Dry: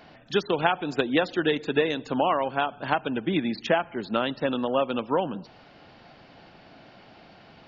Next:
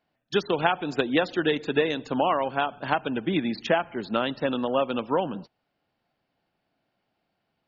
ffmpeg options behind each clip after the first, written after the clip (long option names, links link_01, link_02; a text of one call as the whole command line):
ffmpeg -i in.wav -af "agate=range=-26dB:threshold=-39dB:ratio=16:detection=peak" out.wav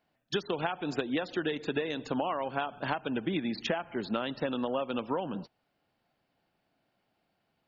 ffmpeg -i in.wav -af "acompressor=threshold=-28dB:ratio=6" out.wav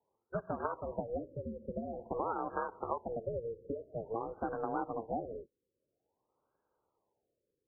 ffmpeg -i in.wav -af "aeval=exprs='val(0)*sin(2*PI*230*n/s)':channel_layout=same,highpass=frequency=210:poles=1,afftfilt=real='re*lt(b*sr/1024,550*pow(1700/550,0.5+0.5*sin(2*PI*0.49*pts/sr)))':imag='im*lt(b*sr/1024,550*pow(1700/550,0.5+0.5*sin(2*PI*0.49*pts/sr)))':win_size=1024:overlap=0.75" out.wav